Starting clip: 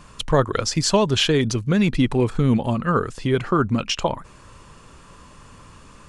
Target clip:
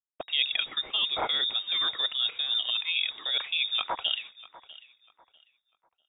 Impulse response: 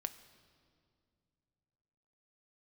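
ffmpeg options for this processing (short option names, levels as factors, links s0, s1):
-filter_complex "[0:a]bandreject=f=138:t=h:w=4,bandreject=f=276:t=h:w=4,bandreject=f=414:t=h:w=4,agate=range=0.0224:threshold=0.0251:ratio=3:detection=peak,highpass=f=59:p=1,lowshelf=f=100:g=-8.5,areverse,acompressor=threshold=0.0447:ratio=12,areverse,acrusher=bits=8:mix=0:aa=0.000001,lowpass=f=3200:t=q:w=0.5098,lowpass=f=3200:t=q:w=0.6013,lowpass=f=3200:t=q:w=0.9,lowpass=f=3200:t=q:w=2.563,afreqshift=-3800,asplit=2[s0][s1];[s1]adelay=646,lowpass=f=2700:p=1,volume=0.119,asplit=2[s2][s3];[s3]adelay=646,lowpass=f=2700:p=1,volume=0.33,asplit=2[s4][s5];[s5]adelay=646,lowpass=f=2700:p=1,volume=0.33[s6];[s0][s2][s4][s6]amix=inputs=4:normalize=0,adynamicequalizer=threshold=0.00562:dfrequency=1600:dqfactor=0.7:tfrequency=1600:tqfactor=0.7:attack=5:release=100:ratio=0.375:range=1.5:mode=cutabove:tftype=highshelf,volume=1.68"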